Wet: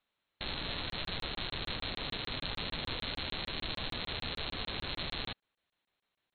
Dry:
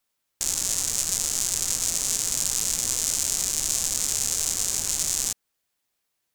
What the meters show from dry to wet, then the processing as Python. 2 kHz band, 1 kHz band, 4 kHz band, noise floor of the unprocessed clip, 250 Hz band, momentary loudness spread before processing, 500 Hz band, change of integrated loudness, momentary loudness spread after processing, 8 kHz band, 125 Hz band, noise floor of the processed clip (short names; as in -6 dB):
-0.5 dB, -0.5 dB, -6.0 dB, -78 dBFS, -0.5 dB, 2 LU, -0.5 dB, -14.5 dB, 1 LU, under -40 dB, -0.5 dB, under -85 dBFS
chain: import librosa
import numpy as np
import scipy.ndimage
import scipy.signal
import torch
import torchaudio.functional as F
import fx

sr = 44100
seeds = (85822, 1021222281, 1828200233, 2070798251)

y = fx.brickwall_lowpass(x, sr, high_hz=4300.0)
y = fx.buffer_crackle(y, sr, first_s=0.9, period_s=0.15, block=1024, kind='zero')